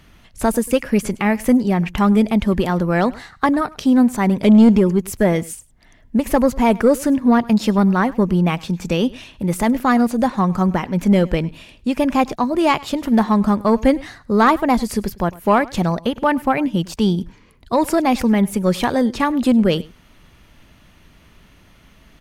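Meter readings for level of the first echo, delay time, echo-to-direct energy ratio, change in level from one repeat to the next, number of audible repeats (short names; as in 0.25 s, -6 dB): -22.0 dB, 0.102 s, -22.0 dB, no steady repeat, 1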